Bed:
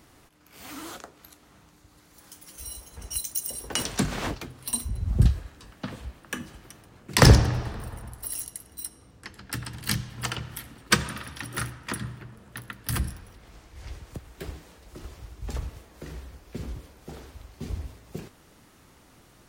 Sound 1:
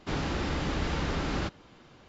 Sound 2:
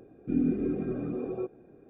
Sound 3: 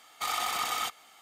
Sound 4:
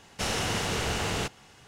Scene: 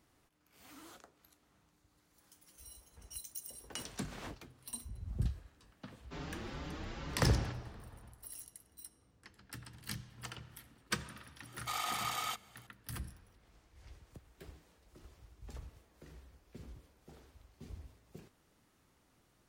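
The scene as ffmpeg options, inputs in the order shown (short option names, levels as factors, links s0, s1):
-filter_complex "[0:a]volume=0.168[s0];[1:a]asplit=2[s1][s2];[s2]adelay=5.6,afreqshift=2.2[s3];[s1][s3]amix=inputs=2:normalize=1,atrim=end=2.08,asetpts=PTS-STARTPTS,volume=0.299,afade=t=in:d=0.004:c=hsin,afade=t=out:st=2.076:d=0.004:c=hsin,adelay=6040[s4];[3:a]atrim=end=1.21,asetpts=PTS-STARTPTS,volume=0.473,afade=t=in:d=0.004:c=hsin,afade=t=out:st=1.206:d=0.004:c=hsin,adelay=505386S[s5];[s0][s4][s5]amix=inputs=3:normalize=0"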